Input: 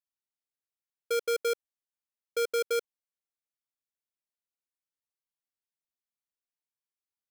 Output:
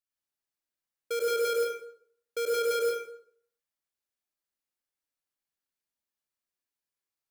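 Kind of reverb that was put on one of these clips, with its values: plate-style reverb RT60 0.63 s, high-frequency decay 0.7×, pre-delay 85 ms, DRR -5 dB; trim -3 dB

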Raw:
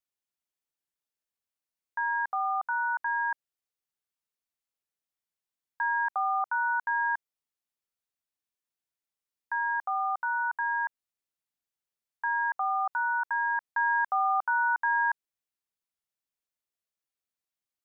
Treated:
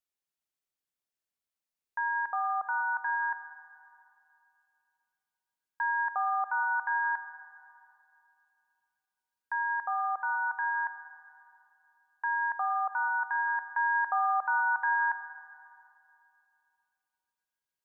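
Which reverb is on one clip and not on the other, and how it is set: algorithmic reverb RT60 2.7 s, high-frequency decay 0.85×, pre-delay 45 ms, DRR 9.5 dB; trim -1.5 dB

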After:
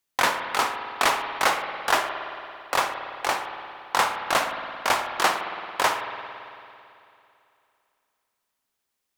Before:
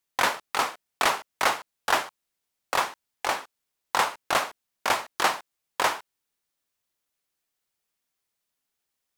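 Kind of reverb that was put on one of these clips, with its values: spring tank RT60 2.7 s, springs 55 ms, chirp 50 ms, DRR 6 dB; trim +1.5 dB

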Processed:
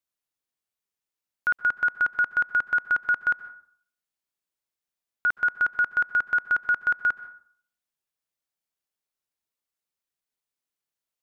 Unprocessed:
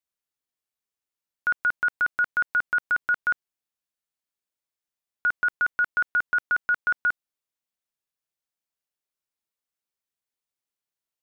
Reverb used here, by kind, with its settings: plate-style reverb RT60 0.53 s, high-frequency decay 0.45×, pre-delay 115 ms, DRR 15.5 dB

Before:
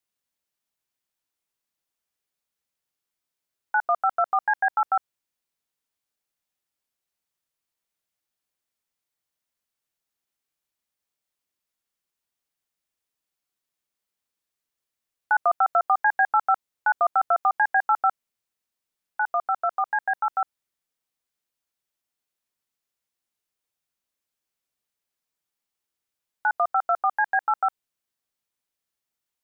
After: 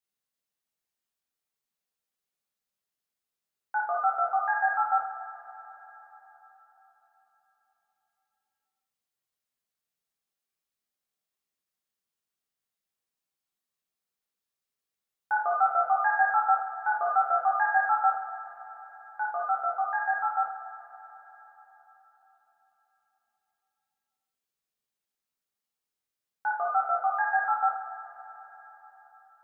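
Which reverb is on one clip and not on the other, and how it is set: two-slope reverb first 0.42 s, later 4.4 s, from -18 dB, DRR -4 dB; trim -9 dB

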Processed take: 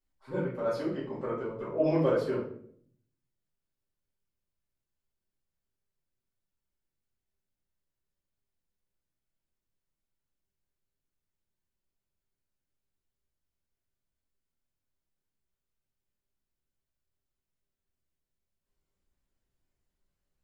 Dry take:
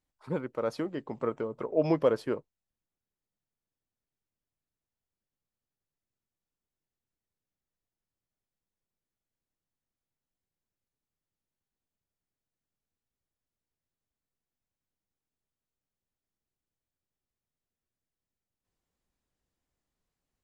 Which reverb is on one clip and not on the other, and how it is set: simulated room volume 85 m³, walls mixed, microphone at 2.4 m; trim -10.5 dB

